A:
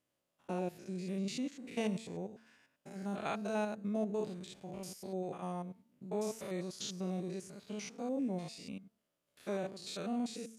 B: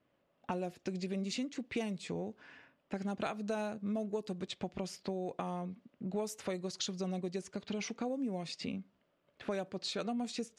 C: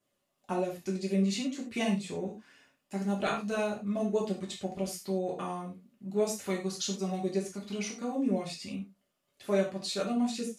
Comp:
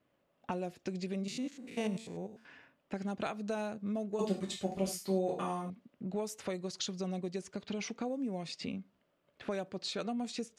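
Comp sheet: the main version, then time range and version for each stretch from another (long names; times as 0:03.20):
B
0:01.27–0:02.45: punch in from A
0:04.19–0:05.70: punch in from C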